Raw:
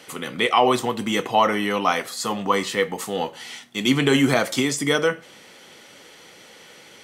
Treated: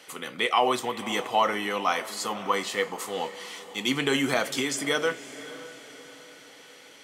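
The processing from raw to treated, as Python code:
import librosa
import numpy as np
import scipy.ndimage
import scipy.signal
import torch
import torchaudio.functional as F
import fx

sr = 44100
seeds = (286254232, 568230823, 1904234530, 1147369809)

y = fx.low_shelf(x, sr, hz=240.0, db=-11.0)
y = fx.echo_diffused(y, sr, ms=543, feedback_pct=46, wet_db=-15)
y = F.gain(torch.from_numpy(y), -4.0).numpy()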